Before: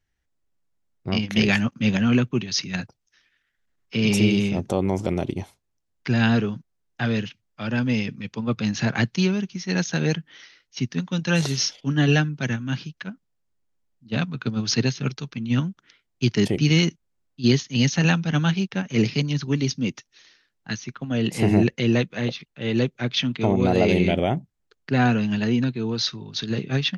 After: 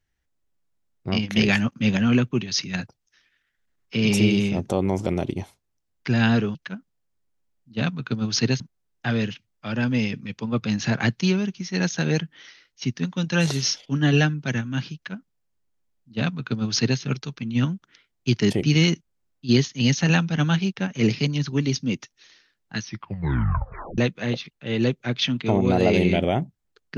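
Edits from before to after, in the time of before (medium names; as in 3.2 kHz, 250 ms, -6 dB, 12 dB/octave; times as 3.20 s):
12.90–14.95 s: copy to 6.55 s
20.76 s: tape stop 1.17 s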